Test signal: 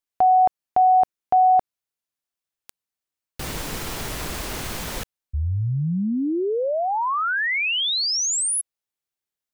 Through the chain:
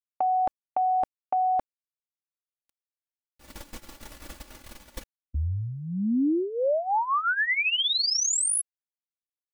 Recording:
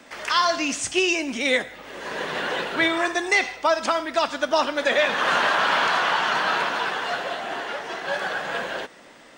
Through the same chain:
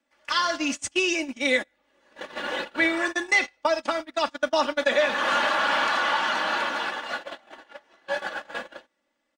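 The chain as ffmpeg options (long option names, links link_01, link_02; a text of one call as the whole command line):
ffmpeg -i in.wav -af "agate=range=-26dB:threshold=-28dB:ratio=16:release=118:detection=peak,aecho=1:1:3.5:0.66,volume=-4dB" out.wav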